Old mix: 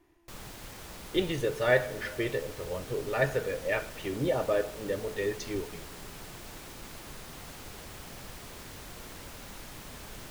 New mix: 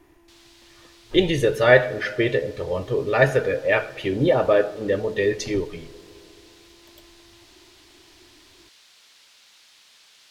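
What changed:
speech +10.0 dB; background: add band-pass filter 4 kHz, Q 1.4

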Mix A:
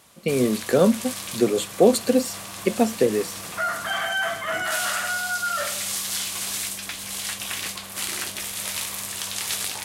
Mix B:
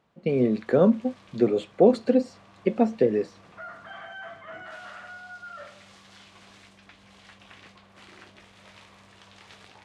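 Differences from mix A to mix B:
background -11.0 dB; master: add tape spacing loss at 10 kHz 31 dB

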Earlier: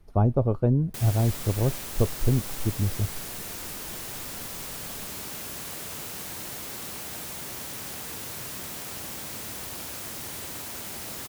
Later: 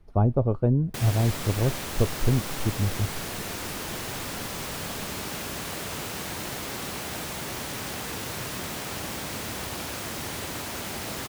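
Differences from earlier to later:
background +7.0 dB; master: add treble shelf 6.4 kHz -10 dB

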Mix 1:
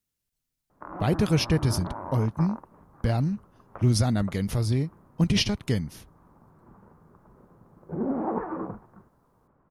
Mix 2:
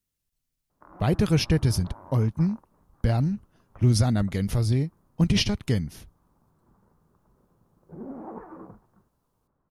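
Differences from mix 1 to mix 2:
background -11.0 dB; master: add bass shelf 80 Hz +6.5 dB

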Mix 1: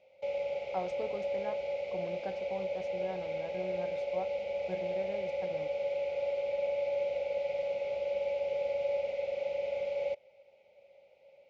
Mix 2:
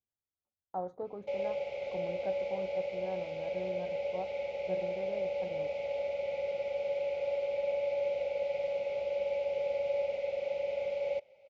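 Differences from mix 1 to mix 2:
speech: add boxcar filter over 17 samples; background: entry +1.05 s

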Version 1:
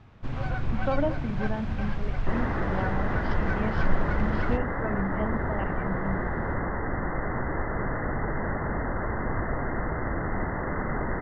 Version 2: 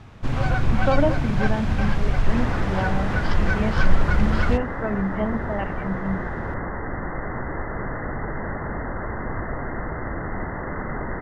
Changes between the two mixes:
speech +6.0 dB; first sound +8.0 dB; master: remove distance through air 93 m

